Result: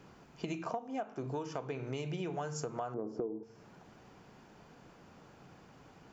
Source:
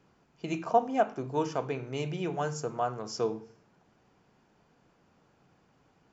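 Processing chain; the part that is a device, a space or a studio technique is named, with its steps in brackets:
0:02.94–0:03.43: drawn EQ curve 150 Hz 0 dB, 310 Hz +14 dB, 5,300 Hz −27 dB
serial compression, peaks first (downward compressor 8 to 1, threshold −38 dBFS, peak gain reduction 21.5 dB; downward compressor 1.5 to 1, threshold −52 dBFS, peak gain reduction 6.5 dB)
level +8.5 dB

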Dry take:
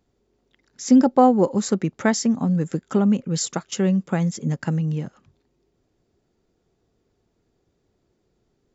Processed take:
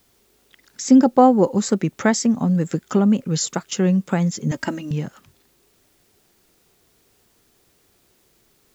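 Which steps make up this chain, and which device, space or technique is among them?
noise-reduction cassette on a plain deck (one half of a high-frequency compander encoder only; tape wow and flutter; white noise bed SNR 42 dB)
0:04.51–0:04.91: comb filter 3.2 ms, depth 93%
level +2 dB

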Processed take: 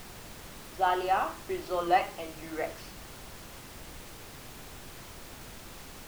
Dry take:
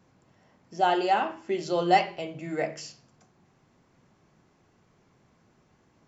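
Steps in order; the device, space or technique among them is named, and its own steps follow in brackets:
horn gramophone (band-pass filter 290–3,600 Hz; parametric band 1,200 Hz +10 dB 0.41 octaves; tape wow and flutter; pink noise bed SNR 11 dB)
level −4.5 dB

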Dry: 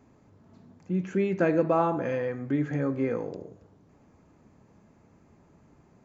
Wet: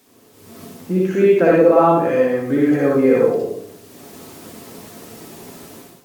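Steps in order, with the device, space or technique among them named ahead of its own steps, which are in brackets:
filmed off a television (band-pass filter 170–6,100 Hz; parametric band 470 Hz +4.5 dB 0.39 octaves; convolution reverb RT60 0.40 s, pre-delay 54 ms, DRR −4.5 dB; white noise bed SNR 33 dB; automatic gain control gain up to 16 dB; level −1 dB; AAC 96 kbit/s 44,100 Hz)

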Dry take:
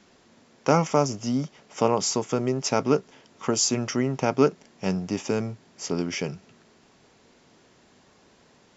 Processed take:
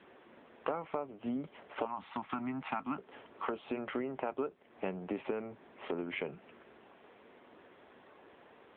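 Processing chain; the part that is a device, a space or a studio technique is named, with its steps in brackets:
0:01.85–0:02.98: Chebyshev band-stop filter 260–810 Hz, order 2
voicemail (band-pass filter 320–2,600 Hz; downward compressor 8 to 1, threshold −36 dBFS, peak gain reduction 20 dB; level +3.5 dB; AMR narrowband 7.95 kbit/s 8,000 Hz)

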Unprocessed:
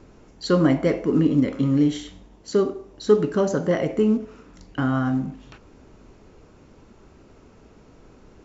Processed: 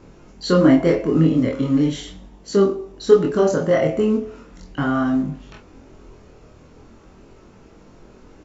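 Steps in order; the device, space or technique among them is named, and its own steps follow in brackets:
double-tracked vocal (double-tracking delay 26 ms −5 dB; chorus effect 0.39 Hz, delay 20 ms, depth 4.5 ms)
level +5.5 dB

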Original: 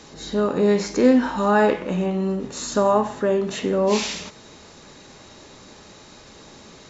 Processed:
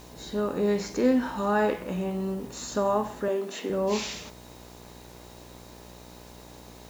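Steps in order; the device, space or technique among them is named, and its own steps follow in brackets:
video cassette with head-switching buzz (hum with harmonics 60 Hz, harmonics 17, −42 dBFS −3 dB per octave; white noise bed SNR 28 dB)
0:03.28–0:03.70: high-pass filter 240 Hz 24 dB per octave
level −7 dB

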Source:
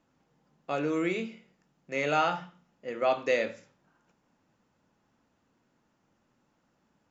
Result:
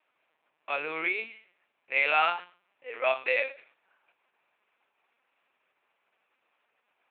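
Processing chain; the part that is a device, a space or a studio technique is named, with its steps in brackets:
talking toy (linear-prediction vocoder at 8 kHz pitch kept; high-pass filter 700 Hz 12 dB per octave; parametric band 2,400 Hz +11 dB 0.43 octaves)
level +2 dB

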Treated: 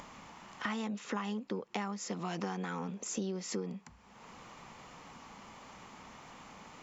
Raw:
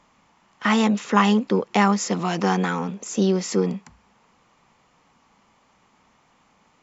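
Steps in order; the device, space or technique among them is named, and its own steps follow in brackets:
upward and downward compression (upward compression, threshold −33 dBFS; downward compressor 6 to 1, threshold −29 dBFS, peak gain reduction 16.5 dB)
level −5.5 dB

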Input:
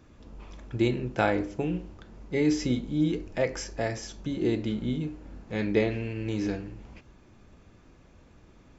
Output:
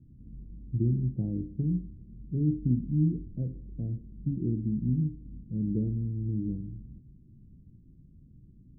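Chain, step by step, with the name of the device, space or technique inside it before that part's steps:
the neighbour's flat through the wall (low-pass filter 260 Hz 24 dB per octave; parametric band 140 Hz +8 dB 0.62 octaves)

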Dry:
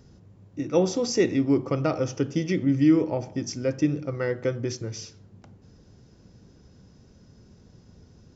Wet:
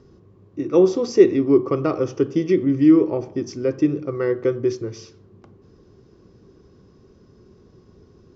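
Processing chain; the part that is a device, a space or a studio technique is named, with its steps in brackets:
inside a cardboard box (low-pass filter 5,300 Hz 12 dB per octave; hollow resonant body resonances 380/1,100 Hz, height 13 dB, ringing for 30 ms)
level −1 dB

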